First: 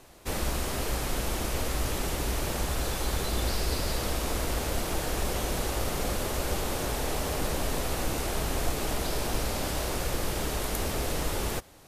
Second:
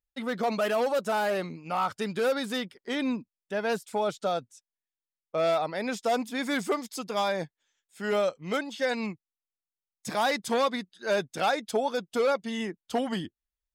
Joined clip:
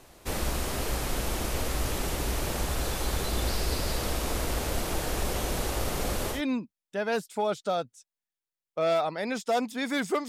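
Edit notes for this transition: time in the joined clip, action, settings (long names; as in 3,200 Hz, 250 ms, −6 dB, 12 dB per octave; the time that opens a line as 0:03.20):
first
0:06.36: continue with second from 0:02.93, crossfade 0.12 s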